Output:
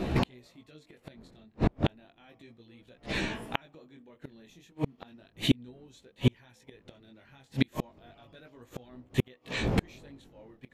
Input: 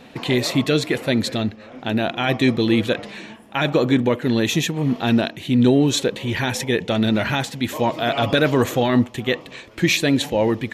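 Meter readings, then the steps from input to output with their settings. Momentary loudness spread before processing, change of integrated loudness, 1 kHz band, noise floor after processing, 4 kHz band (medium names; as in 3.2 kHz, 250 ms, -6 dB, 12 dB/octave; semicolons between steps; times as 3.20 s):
8 LU, -12.5 dB, -16.5 dB, -65 dBFS, -15.5 dB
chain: wind noise 310 Hz -28 dBFS; chorus 0.33 Hz, delay 15.5 ms, depth 7.4 ms; inverted gate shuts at -18 dBFS, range -39 dB; trim +6.5 dB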